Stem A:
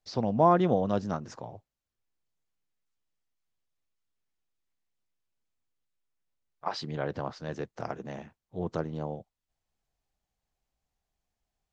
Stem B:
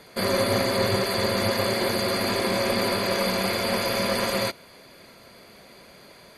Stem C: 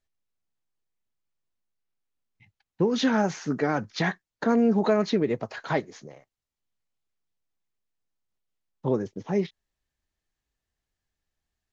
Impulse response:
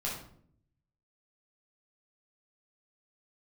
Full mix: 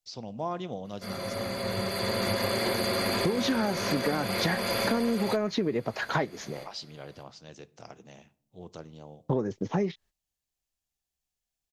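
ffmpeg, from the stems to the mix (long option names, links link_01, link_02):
-filter_complex "[0:a]aexciter=amount=3.1:drive=6.4:freq=2400,volume=-12dB,asplit=3[link_01][link_02][link_03];[link_02]volume=-21dB[link_04];[1:a]adelay=850,volume=0dB,asplit=2[link_05][link_06];[link_06]volume=-19.5dB[link_07];[2:a]agate=range=-19dB:threshold=-52dB:ratio=16:detection=peak,acontrast=79,adelay=450,volume=0dB[link_08];[link_03]apad=whole_len=318777[link_09];[link_05][link_09]sidechaincompress=threshold=-56dB:ratio=4:attack=6.9:release=883[link_10];[3:a]atrim=start_sample=2205[link_11];[link_04][link_07]amix=inputs=2:normalize=0[link_12];[link_12][link_11]afir=irnorm=-1:irlink=0[link_13];[link_01][link_10][link_08][link_13]amix=inputs=4:normalize=0,acompressor=threshold=-24dB:ratio=8"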